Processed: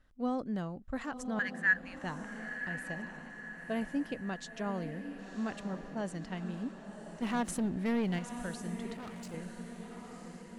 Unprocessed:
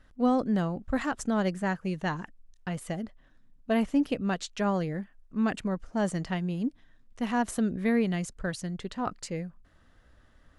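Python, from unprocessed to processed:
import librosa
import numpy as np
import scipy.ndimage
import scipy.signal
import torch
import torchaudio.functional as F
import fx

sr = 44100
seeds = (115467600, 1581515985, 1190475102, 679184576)

y = fx.highpass_res(x, sr, hz=1700.0, q=14.0, at=(1.39, 2.04))
y = fx.leveller(y, sr, passes=2, at=(7.22, 8.19))
y = fx.echo_diffused(y, sr, ms=1035, feedback_pct=50, wet_db=-8.5)
y = fx.overload_stage(y, sr, gain_db=33.0, at=(8.94, 9.34))
y = F.gain(torch.from_numpy(y), -9.0).numpy()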